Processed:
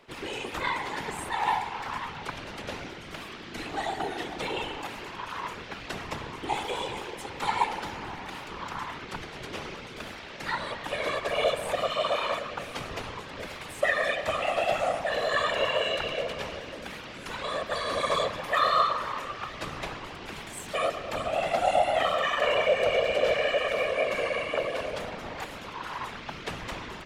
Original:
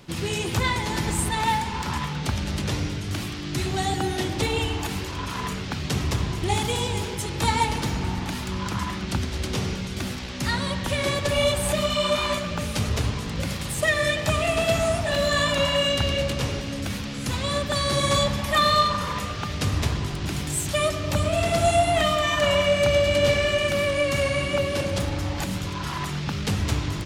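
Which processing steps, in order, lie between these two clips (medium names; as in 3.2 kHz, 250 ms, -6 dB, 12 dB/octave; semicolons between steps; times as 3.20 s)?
three-band isolator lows -16 dB, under 390 Hz, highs -12 dB, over 3.1 kHz; whisper effect; trim -2.5 dB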